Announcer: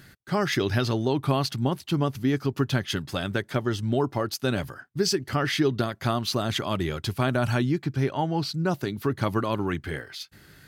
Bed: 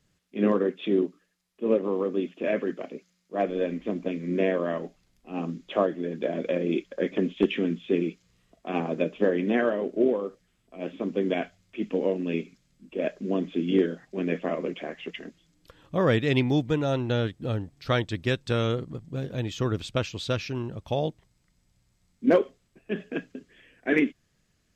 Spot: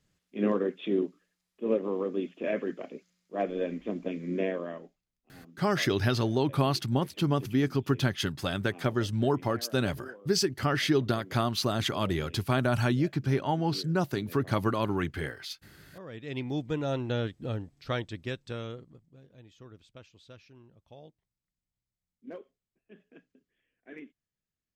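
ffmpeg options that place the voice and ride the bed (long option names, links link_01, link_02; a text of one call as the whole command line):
ffmpeg -i stem1.wav -i stem2.wav -filter_complex "[0:a]adelay=5300,volume=-2dB[link_01];[1:a]volume=14dB,afade=type=out:start_time=4.31:duration=0.71:silence=0.11885,afade=type=in:start_time=16.11:duration=0.77:silence=0.125893,afade=type=out:start_time=17.48:duration=1.69:silence=0.112202[link_02];[link_01][link_02]amix=inputs=2:normalize=0" out.wav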